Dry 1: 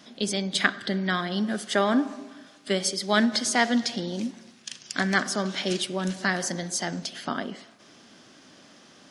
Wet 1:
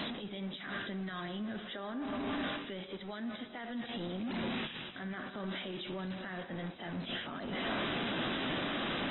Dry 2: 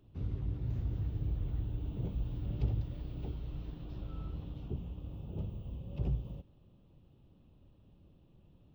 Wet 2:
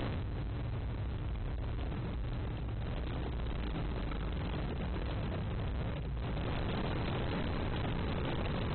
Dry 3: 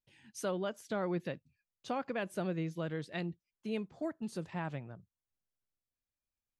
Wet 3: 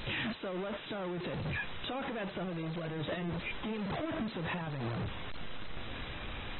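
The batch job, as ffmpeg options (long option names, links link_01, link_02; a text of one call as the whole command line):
ffmpeg -i in.wav -af "aeval=exprs='val(0)+0.5*0.0355*sgn(val(0))':channel_layout=same,areverse,acompressor=threshold=-31dB:ratio=20,areverse,alimiter=level_in=9dB:limit=-24dB:level=0:latency=1:release=101,volume=-9dB" -ar 24000 -c:a aac -b:a 16k out.aac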